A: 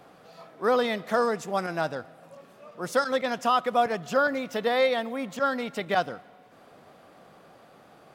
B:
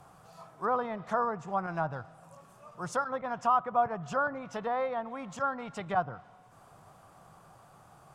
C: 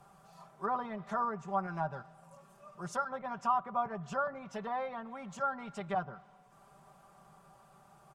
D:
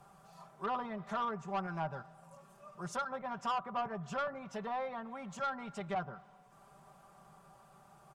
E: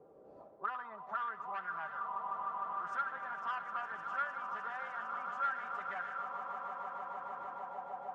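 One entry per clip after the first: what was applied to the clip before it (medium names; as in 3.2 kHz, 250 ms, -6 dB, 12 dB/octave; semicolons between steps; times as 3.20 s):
bass shelf 82 Hz +9 dB; low-pass that closes with the level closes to 1.5 kHz, closed at -23 dBFS; graphic EQ 125/250/500/1000/2000/4000/8000 Hz +5/-10/-9/+5/-8/-8/+6 dB
comb 5.1 ms, depth 76%; trim -6 dB
saturation -29 dBFS, distortion -12 dB
wind noise 320 Hz -54 dBFS; echo with a slow build-up 152 ms, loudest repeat 8, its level -12 dB; auto-wah 430–1600 Hz, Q 4, up, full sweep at -33 dBFS; trim +6 dB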